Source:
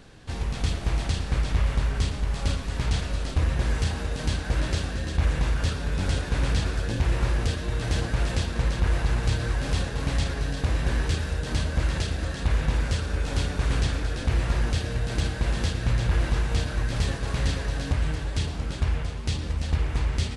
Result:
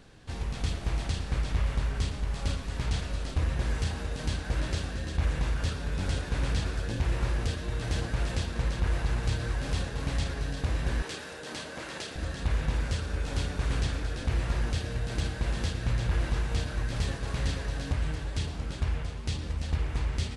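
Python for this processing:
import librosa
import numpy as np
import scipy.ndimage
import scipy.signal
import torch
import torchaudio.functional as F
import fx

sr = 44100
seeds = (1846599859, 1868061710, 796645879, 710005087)

y = fx.highpass(x, sr, hz=300.0, slope=12, at=(11.02, 12.16))
y = y * 10.0 ** (-4.5 / 20.0)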